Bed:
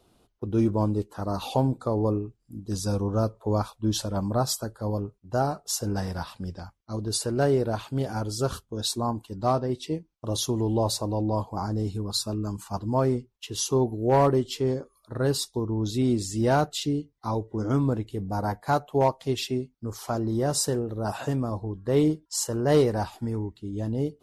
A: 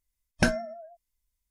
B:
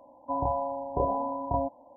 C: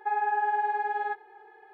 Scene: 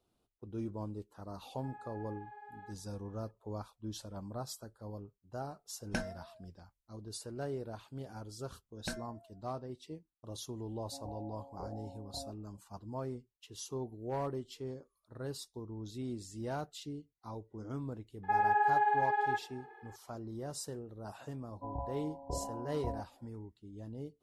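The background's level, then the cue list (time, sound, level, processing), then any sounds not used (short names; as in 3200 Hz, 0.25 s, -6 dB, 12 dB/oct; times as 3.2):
bed -16.5 dB
1.58 add C -16.5 dB + compressor 4:1, threshold -32 dBFS
5.52 add A -13 dB
8.45 add A -17.5 dB
10.63 add B -17.5 dB + Butterworth band-stop 1000 Hz, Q 5.9
18.23 add C -1.5 dB
21.33 add B -14.5 dB + low shelf 190 Hz +10 dB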